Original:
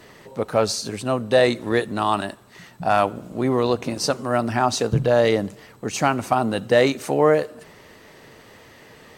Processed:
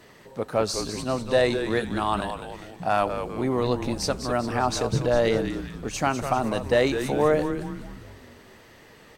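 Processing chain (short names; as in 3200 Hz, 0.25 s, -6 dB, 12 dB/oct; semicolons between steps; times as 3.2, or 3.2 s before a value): frequency-shifting echo 0.2 s, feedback 50%, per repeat -140 Hz, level -8 dB; gain -4.5 dB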